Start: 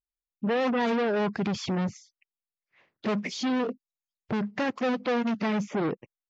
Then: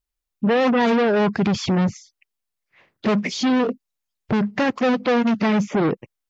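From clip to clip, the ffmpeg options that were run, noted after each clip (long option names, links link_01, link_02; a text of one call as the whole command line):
ffmpeg -i in.wav -af "lowshelf=frequency=85:gain=8.5,volume=7.5dB" out.wav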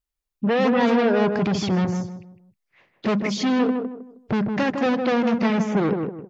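ffmpeg -i in.wav -filter_complex "[0:a]asplit=2[link_01][link_02];[link_02]adelay=157,lowpass=frequency=1000:poles=1,volume=-4dB,asplit=2[link_03][link_04];[link_04]adelay=157,lowpass=frequency=1000:poles=1,volume=0.33,asplit=2[link_05][link_06];[link_06]adelay=157,lowpass=frequency=1000:poles=1,volume=0.33,asplit=2[link_07][link_08];[link_08]adelay=157,lowpass=frequency=1000:poles=1,volume=0.33[link_09];[link_01][link_03][link_05][link_07][link_09]amix=inputs=5:normalize=0,volume=-2.5dB" out.wav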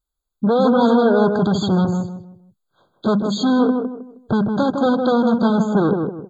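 ffmpeg -i in.wav -af "afftfilt=real='re*eq(mod(floor(b*sr/1024/1600),2),0)':imag='im*eq(mod(floor(b*sr/1024/1600),2),0)':win_size=1024:overlap=0.75,volume=4.5dB" out.wav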